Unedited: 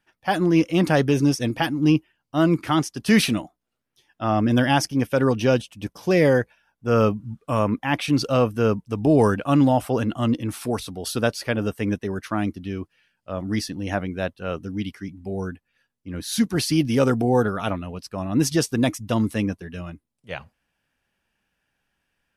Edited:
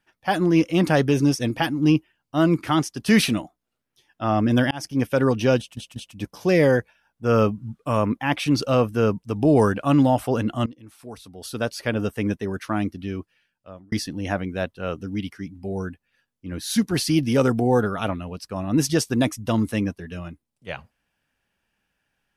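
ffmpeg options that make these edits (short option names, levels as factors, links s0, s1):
-filter_complex "[0:a]asplit=6[s0][s1][s2][s3][s4][s5];[s0]atrim=end=4.71,asetpts=PTS-STARTPTS,afade=t=out:st=4.706:d=0.004:c=hsin[s6];[s1]atrim=start=4.71:end=5.772,asetpts=PTS-STARTPTS,afade=t=in:d=0.29[s7];[s2]atrim=start=5.578:end=5.772[s8];[s3]atrim=start=5.578:end=10.28,asetpts=PTS-STARTPTS,afade=t=out:st=4.698:d=0.004:c=hsin:silence=0.105925[s9];[s4]atrim=start=10.28:end=13.54,asetpts=PTS-STARTPTS,afade=t=in:d=1.27:c=qua:silence=0.105925,afade=t=out:st=2.52:d=0.74[s10];[s5]atrim=start=13.54,asetpts=PTS-STARTPTS,afade=t=in:d=0.004:c=hsin[s11];[s6][s7]concat=n=2:v=0:a=1[s12];[s12][s8]acrossfade=d=0.004:c1=hsin:c2=hsin[s13];[s9][s10][s11]concat=n=3:v=0:a=1[s14];[s13][s14]acrossfade=d=0.004:c1=hsin:c2=hsin"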